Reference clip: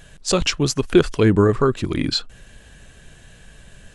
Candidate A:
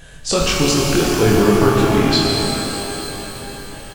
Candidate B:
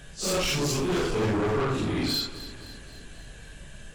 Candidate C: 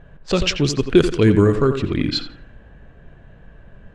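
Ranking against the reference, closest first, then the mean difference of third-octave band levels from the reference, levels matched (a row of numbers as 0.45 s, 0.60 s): C, B, A; 4.5 dB, 10.5 dB, 14.5 dB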